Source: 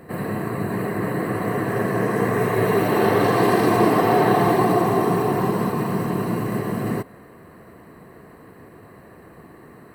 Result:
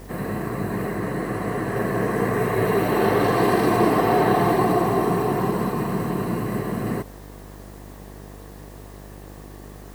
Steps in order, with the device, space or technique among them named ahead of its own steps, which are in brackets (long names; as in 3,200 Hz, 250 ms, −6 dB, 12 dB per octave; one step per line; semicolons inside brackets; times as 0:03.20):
0:00.95–0:01.76: elliptic low-pass filter 12,000 Hz
video cassette with head-switching buzz (hum with harmonics 50 Hz, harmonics 19, −40 dBFS −5 dB per octave; white noise bed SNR 30 dB)
level −1.5 dB